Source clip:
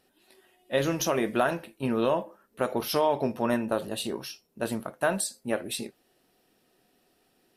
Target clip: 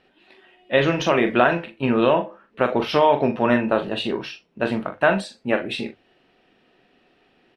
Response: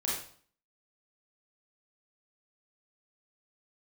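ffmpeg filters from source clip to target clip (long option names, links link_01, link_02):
-filter_complex "[0:a]lowpass=frequency=2700:width_type=q:width=1.6,bandreject=frequency=50:width_type=h:width=6,bandreject=frequency=100:width_type=h:width=6,asplit=2[link_01][link_02];[link_02]adelay=41,volume=-8.5dB[link_03];[link_01][link_03]amix=inputs=2:normalize=0,volume=7dB"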